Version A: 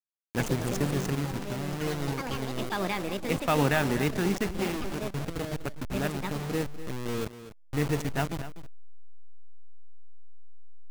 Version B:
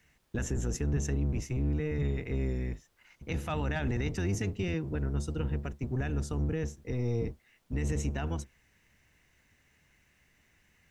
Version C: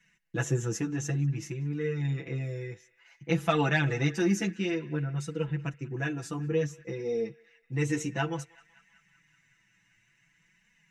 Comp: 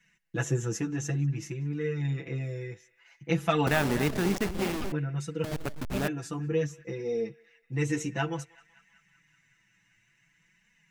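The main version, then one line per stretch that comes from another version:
C
3.67–4.92 s: from A
5.44–6.08 s: from A
not used: B

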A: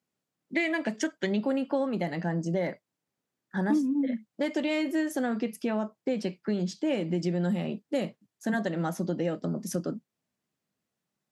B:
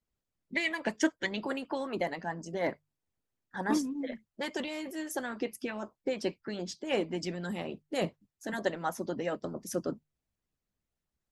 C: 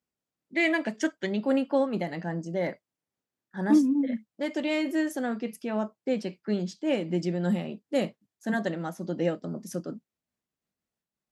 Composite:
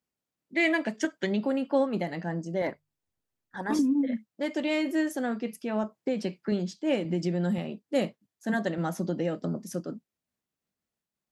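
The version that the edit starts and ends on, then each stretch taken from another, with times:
C
1.05–1.67 s: from A
2.62–3.79 s: from B
5.84–6.52 s: from A
7.05–7.58 s: from A
8.78–9.56 s: from A

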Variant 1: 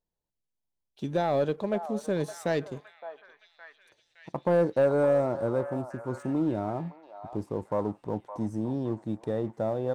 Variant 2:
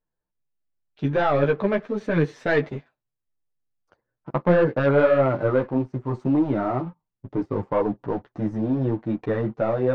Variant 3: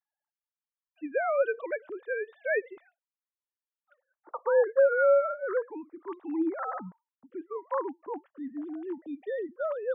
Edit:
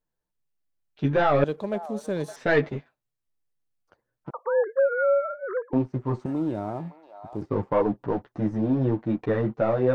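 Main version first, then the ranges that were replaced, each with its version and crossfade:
2
1.44–2.36 s: from 1
4.31–5.73 s: from 3
6.26–7.42 s: from 1

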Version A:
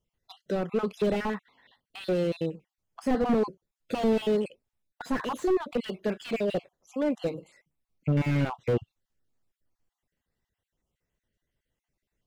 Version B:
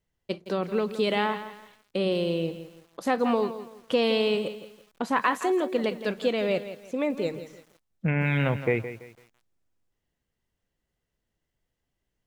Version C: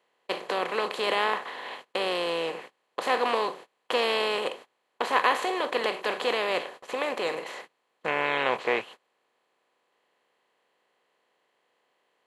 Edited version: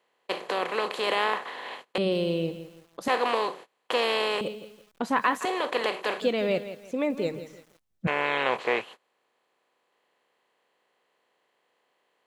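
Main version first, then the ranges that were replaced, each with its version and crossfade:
C
1.98–3.08 s: from B
4.41–5.45 s: from B
6.20–8.07 s: from B
not used: A

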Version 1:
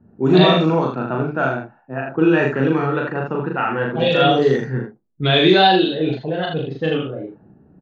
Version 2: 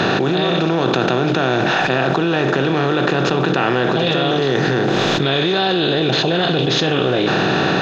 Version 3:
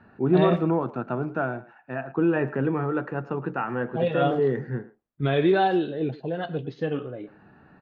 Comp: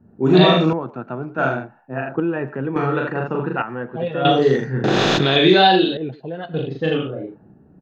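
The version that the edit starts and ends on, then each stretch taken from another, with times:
1
0.73–1.38 s: from 3
2.20–2.76 s: from 3
3.62–4.25 s: from 3
4.84–5.36 s: from 2
5.97–6.54 s: from 3

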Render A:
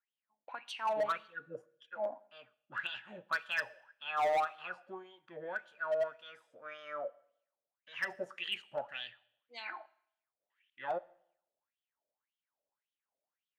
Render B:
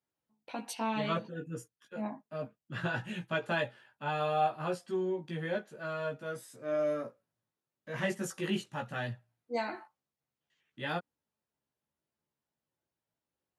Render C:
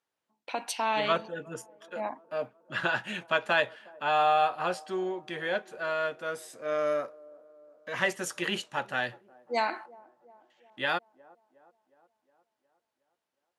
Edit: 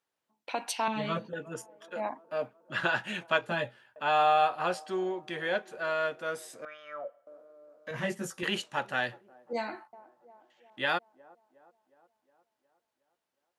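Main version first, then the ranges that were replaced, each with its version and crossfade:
C
0.88–1.33 s: from B
3.41–3.96 s: from B
6.65–7.27 s: from A
7.91–8.43 s: from B
9.53–9.93 s: from B

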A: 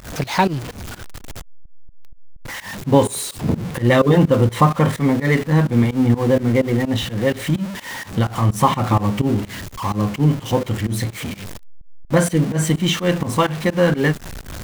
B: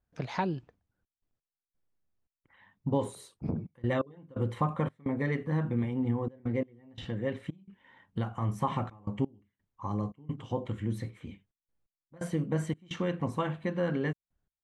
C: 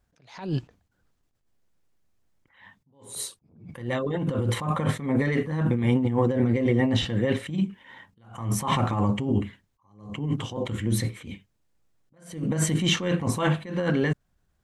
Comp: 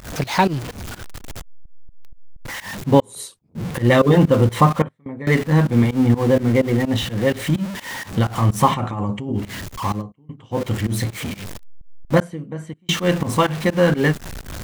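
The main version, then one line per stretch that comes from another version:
A
3.00–3.55 s: from C
4.82–5.27 s: from B
8.74–9.41 s: from C, crossfade 0.16 s
9.98–10.56 s: from B, crossfade 0.10 s
12.20–12.89 s: from B

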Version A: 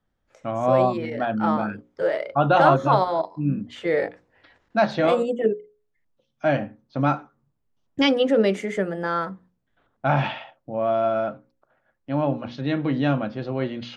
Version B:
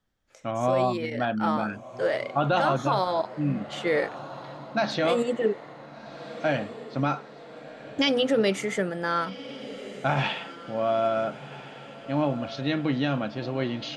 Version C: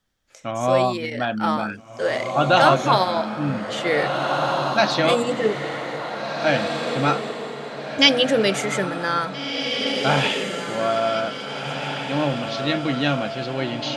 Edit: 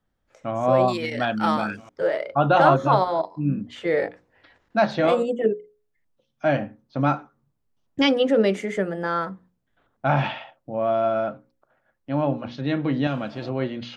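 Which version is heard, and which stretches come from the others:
A
0.88–1.89 s: from C
13.07–13.49 s: from B

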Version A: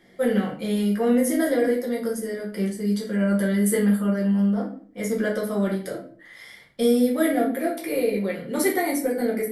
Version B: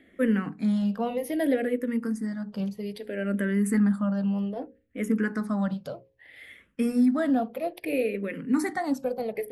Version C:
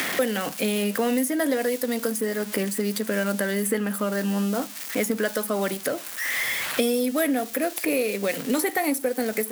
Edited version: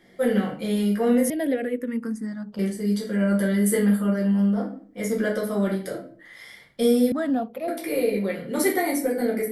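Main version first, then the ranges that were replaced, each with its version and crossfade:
A
1.30–2.59 s: from B
7.12–7.68 s: from B
not used: C

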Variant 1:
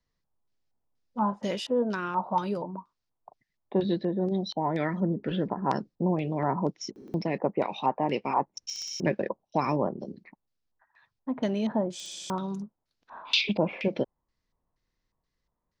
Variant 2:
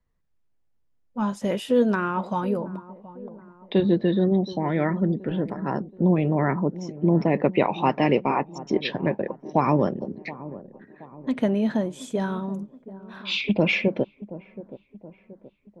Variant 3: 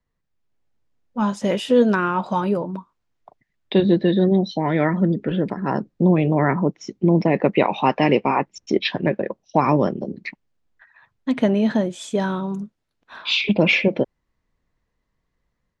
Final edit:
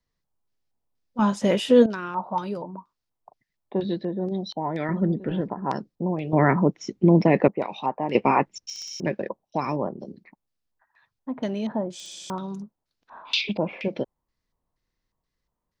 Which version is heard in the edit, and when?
1
1.19–1.86 s: from 3
4.89–5.41 s: from 2
6.33–7.48 s: from 3
8.15–8.58 s: from 3

